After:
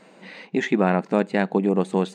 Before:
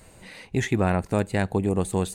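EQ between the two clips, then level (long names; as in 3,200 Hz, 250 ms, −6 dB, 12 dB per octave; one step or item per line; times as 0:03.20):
linear-phase brick-wall high-pass 160 Hz
high-frequency loss of the air 170 metres
high-shelf EQ 8,800 Hz +5 dB
+4.5 dB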